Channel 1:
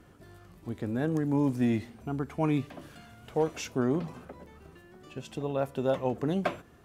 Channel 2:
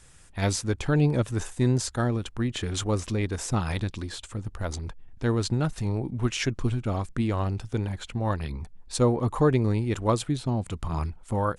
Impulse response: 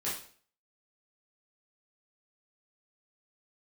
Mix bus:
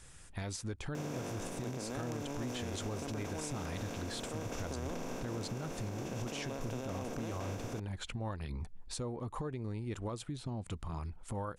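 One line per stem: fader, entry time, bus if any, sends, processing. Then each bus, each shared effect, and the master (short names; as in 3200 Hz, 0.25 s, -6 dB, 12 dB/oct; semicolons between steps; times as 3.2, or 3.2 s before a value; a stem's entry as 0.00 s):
-9.5 dB, 0.95 s, no send, per-bin compression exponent 0.2; high shelf 4600 Hz +11.5 dB; auto duck -9 dB, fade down 1.80 s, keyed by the second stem
-1.5 dB, 0.00 s, no send, compressor 12:1, threshold -33 dBFS, peak gain reduction 17.5 dB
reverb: off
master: limiter -30 dBFS, peak gain reduction 6.5 dB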